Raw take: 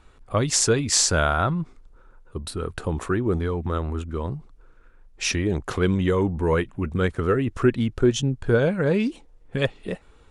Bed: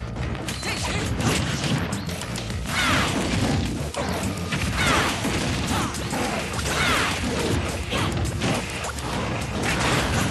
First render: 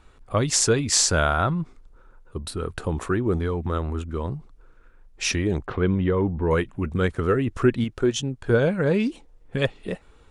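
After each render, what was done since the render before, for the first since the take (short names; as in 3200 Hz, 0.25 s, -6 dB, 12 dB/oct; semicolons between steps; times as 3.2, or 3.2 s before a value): 5.66–6.51 air absorption 380 m; 7.84–8.5 low shelf 230 Hz -8 dB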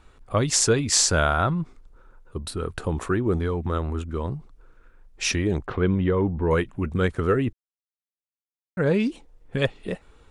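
7.53–8.77 mute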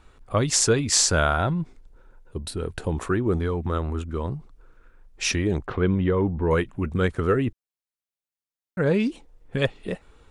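1.36–2.95 bell 1200 Hz -11.5 dB 0.25 oct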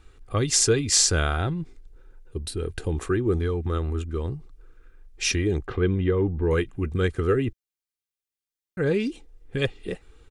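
bell 850 Hz -8 dB 1.3 oct; comb 2.5 ms, depth 41%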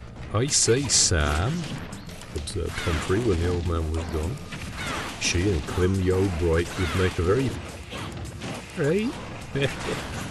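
add bed -10 dB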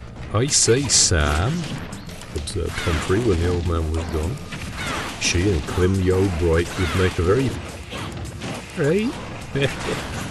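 gain +4 dB; limiter -2 dBFS, peak gain reduction 1 dB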